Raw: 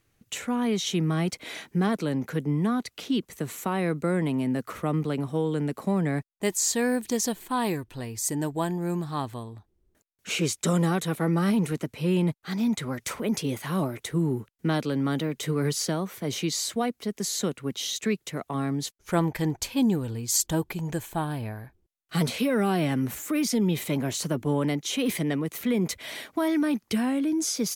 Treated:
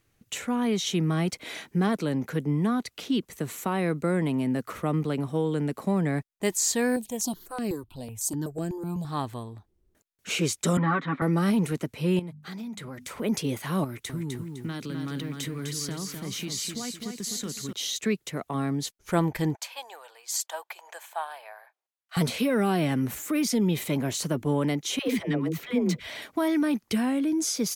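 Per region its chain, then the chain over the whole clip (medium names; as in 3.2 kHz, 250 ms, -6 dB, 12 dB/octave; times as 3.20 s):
6.96–9.05 s: peaking EQ 1.9 kHz -11 dB 0.71 oct + stepped phaser 8 Hz 340–3500 Hz
10.77–11.22 s: cabinet simulation 210–2900 Hz, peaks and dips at 260 Hz +9 dB, 430 Hz -9 dB, 640 Hz -8 dB, 1.2 kHz +8 dB, 1.9 kHz +4 dB, 2.8 kHz -6 dB + comb 7.2 ms, depth 78%
12.19–13.18 s: hum notches 50/100/150/200/250 Hz + dynamic bell 5.9 kHz, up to -4 dB, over -56 dBFS, Q 6.2 + compression 4:1, threshold -36 dBFS
13.84–17.73 s: compression 3:1, threshold -29 dBFS + peaking EQ 620 Hz -10 dB 1.2 oct + bit-crushed delay 254 ms, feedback 35%, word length 10-bit, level -5 dB
19.55–22.17 s: steep high-pass 630 Hz + treble shelf 3.6 kHz -7 dB
24.99–26.22 s: peaking EQ 11 kHz -10.5 dB 1.1 oct + phase dispersion lows, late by 100 ms, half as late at 440 Hz
whole clip: none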